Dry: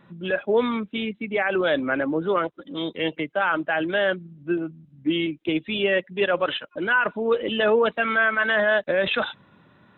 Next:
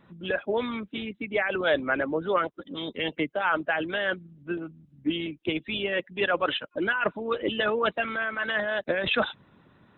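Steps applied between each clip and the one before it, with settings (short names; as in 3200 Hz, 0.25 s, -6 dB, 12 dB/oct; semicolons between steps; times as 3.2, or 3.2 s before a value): harmonic-percussive split harmonic -10 dB; low shelf 260 Hz +5.5 dB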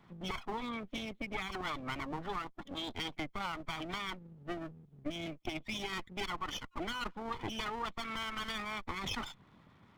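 minimum comb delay 0.91 ms; compressor, threshold -33 dBFS, peak gain reduction 11.5 dB; gain -2.5 dB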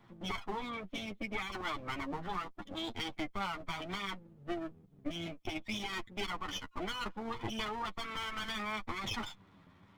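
flange 0.67 Hz, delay 8.5 ms, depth 2.8 ms, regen +14%; gain +3.5 dB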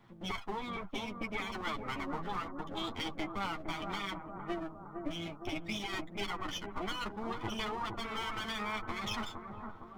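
analogue delay 0.461 s, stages 4096, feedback 60%, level -5.5 dB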